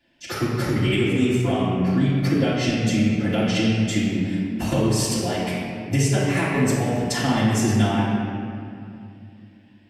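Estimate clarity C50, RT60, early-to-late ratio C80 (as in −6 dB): −1.5 dB, 2.5 s, 0.5 dB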